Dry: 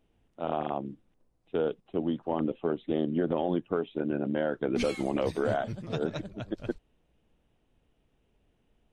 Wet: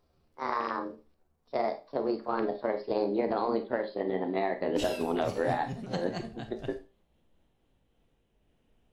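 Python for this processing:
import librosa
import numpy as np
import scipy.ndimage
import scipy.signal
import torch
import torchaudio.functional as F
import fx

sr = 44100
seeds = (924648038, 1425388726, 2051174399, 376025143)

y = fx.pitch_glide(x, sr, semitones=8.0, runs='ending unshifted')
y = fx.rev_schroeder(y, sr, rt60_s=0.3, comb_ms=28, drr_db=7.5)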